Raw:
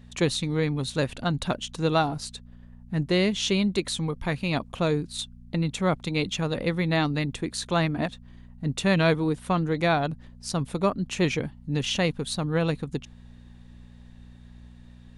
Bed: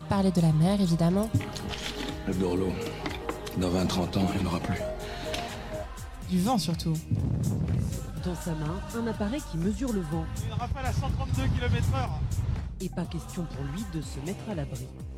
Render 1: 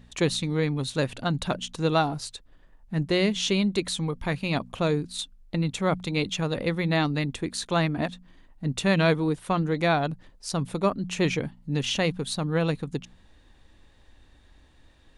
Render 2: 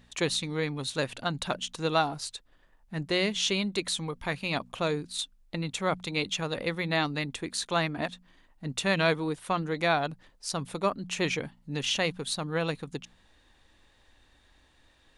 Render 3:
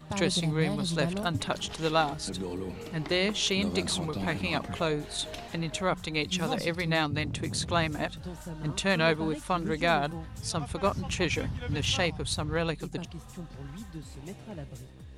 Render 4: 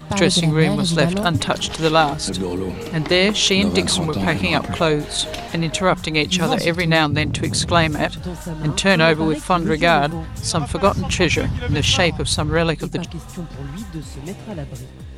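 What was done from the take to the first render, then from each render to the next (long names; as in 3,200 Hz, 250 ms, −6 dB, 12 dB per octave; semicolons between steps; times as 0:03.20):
hum removal 60 Hz, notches 4
low-shelf EQ 420 Hz −9 dB
mix in bed −8 dB
level +11.5 dB; brickwall limiter −2 dBFS, peak gain reduction 2.5 dB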